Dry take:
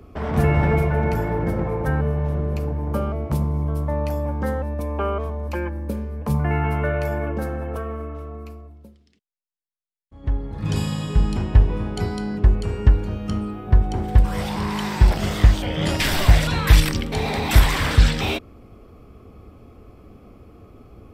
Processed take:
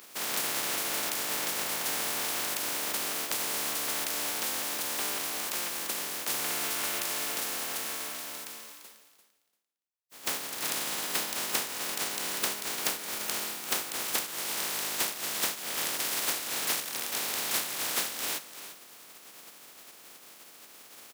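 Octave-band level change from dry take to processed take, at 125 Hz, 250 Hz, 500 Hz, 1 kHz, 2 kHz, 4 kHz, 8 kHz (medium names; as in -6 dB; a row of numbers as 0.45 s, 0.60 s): -35.5 dB, -19.5 dB, -14.5 dB, -9.0 dB, -5.5 dB, -1.0 dB, +8.0 dB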